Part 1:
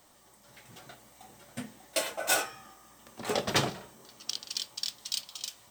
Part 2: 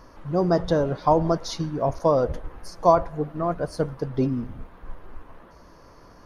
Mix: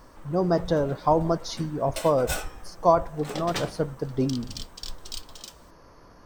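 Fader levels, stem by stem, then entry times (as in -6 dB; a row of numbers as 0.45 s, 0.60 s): -4.5 dB, -2.0 dB; 0.00 s, 0.00 s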